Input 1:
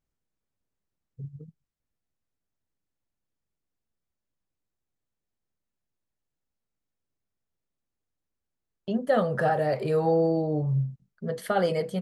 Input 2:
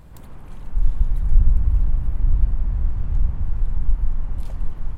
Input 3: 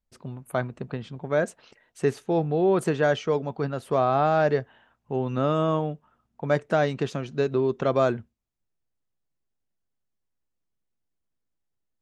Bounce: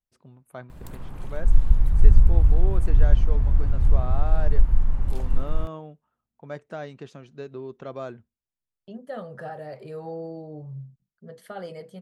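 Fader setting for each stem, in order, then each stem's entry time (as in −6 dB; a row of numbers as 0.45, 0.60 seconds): −12.0, +1.5, −13.0 decibels; 0.00, 0.70, 0.00 seconds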